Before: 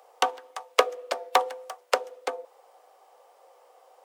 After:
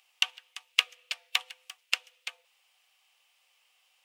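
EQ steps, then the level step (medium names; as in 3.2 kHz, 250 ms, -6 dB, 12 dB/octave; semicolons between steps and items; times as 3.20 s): resonant high-pass 2.7 kHz, resonance Q 3.7; -3.5 dB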